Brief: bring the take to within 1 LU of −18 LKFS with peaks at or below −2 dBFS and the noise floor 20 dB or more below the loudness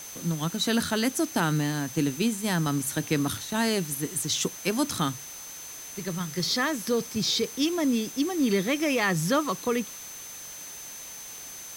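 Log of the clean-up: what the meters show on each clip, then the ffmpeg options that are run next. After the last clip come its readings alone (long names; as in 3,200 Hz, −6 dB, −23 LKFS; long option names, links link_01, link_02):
interfering tone 6,200 Hz; level of the tone −41 dBFS; background noise floor −41 dBFS; target noise floor −47 dBFS; integrated loudness −27.0 LKFS; sample peak −11.5 dBFS; target loudness −18.0 LKFS
→ -af "bandreject=frequency=6200:width=30"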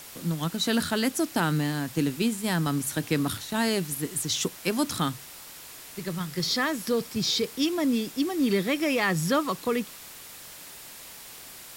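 interfering tone none found; background noise floor −45 dBFS; target noise floor −47 dBFS
→ -af "afftdn=noise_reduction=6:noise_floor=-45"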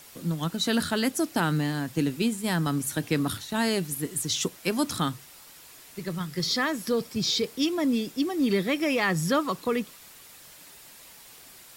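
background noise floor −50 dBFS; integrated loudness −27.0 LKFS; sample peak −12.0 dBFS; target loudness −18.0 LKFS
→ -af "volume=9dB"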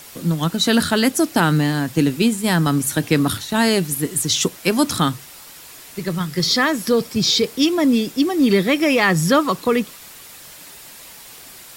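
integrated loudness −18.0 LKFS; sample peak −3.0 dBFS; background noise floor −41 dBFS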